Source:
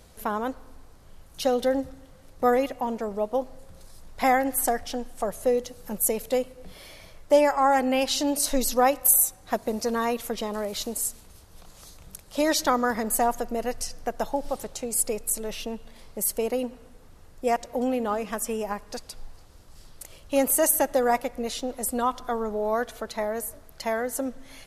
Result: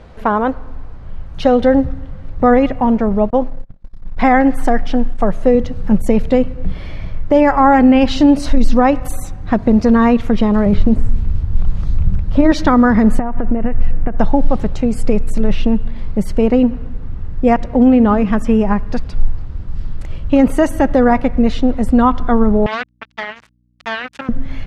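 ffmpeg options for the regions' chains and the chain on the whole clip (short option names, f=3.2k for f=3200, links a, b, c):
-filter_complex "[0:a]asettb=1/sr,asplit=3[a][b][c];[a]atrim=end=3.304[d];[b]atrim=start=3.3:end=5.55,asetpts=PTS-STARTPTS,afade=t=in:d=0.004:c=qsin,afade=t=out:st=2.246:d=0.004:c=qsin,agate=range=-32dB:threshold=-43dB:ratio=16:release=100:detection=peak,equalizer=f=72:t=o:w=1.6:g=-12[e];[c]atrim=start=5.546[f];[d][e]acrossfade=d=0.004:c1=hsin:c2=qsin[g];[g][f]acrossfade=d=0.004:c1=qsin:c2=hsin,asettb=1/sr,asplit=3[h][i][j];[h]atrim=end=10.664[k];[i]atrim=start=10.66:end=12.52,asetpts=PTS-STARTPTS,afade=t=in:d=0.004:c=qsin,afade=t=out:st=1.856:d=0.004:c=qsin,acrossover=split=2500[l][m];[m]acompressor=threshold=-45dB:ratio=4:attack=1:release=60[n];[l][n]amix=inputs=2:normalize=0,lowshelf=f=230:g=9.5,bandreject=f=60:t=h:w=6,bandreject=f=120:t=h:w=6,bandreject=f=180:t=h:w=6,bandreject=f=240:t=h:w=6,bandreject=f=300:t=h:w=6,bandreject=f=360:t=h:w=6,bandreject=f=420:t=h:w=6[o];[j]atrim=start=12.516[p];[k][o]acrossfade=d=0.004:c1=hsin:c2=qsin[q];[q][p]acrossfade=d=0.004:c1=qsin:c2=hsin,asettb=1/sr,asplit=3[r][s][t];[r]atrim=end=13.194[u];[s]atrim=start=13.19:end=14.18,asetpts=PTS-STARTPTS,afade=t=in:d=0.004:c=qsin,afade=t=out:st=0.986:d=0.004:c=qsin,lowpass=f=2.6k:w=0.5412,lowpass=f=2.6k:w=1.3066,acompressor=threshold=-30dB:ratio=16:attack=3.2:release=140:knee=1:detection=peak[v];[t]atrim=start=14.176[w];[u][v]acrossfade=d=0.004:c1=hsin:c2=qsin[x];[x][w]acrossfade=d=0.004:c1=qsin:c2=hsin,asettb=1/sr,asplit=3[y][z][aa];[y]atrim=end=22.664[ab];[z]atrim=start=22.66:end=24.29,asetpts=PTS-STARTPTS,afade=t=in:d=0.004:c=qsin,afade=t=out:st=1.626:d=0.004:c=qsin,acrusher=bits=3:mix=0:aa=0.5,aeval=exprs='val(0)+0.00126*(sin(2*PI*60*n/s)+sin(2*PI*2*60*n/s)/2+sin(2*PI*3*60*n/s)/3+sin(2*PI*4*60*n/s)/4+sin(2*PI*5*60*n/s)/5)':c=same,bandpass=f=3.8k:t=q:w=0.56[ac];[aa]atrim=start=24.286[ad];[ab][ac]acrossfade=d=0.004:c1=hsin:c2=qsin[ae];[ae][ad]acrossfade=d=0.004:c1=qsin:c2=hsin,lowpass=2.2k,asubboost=boost=5.5:cutoff=220,alimiter=level_in=14.5dB:limit=-1dB:release=50:level=0:latency=1,volume=-1dB"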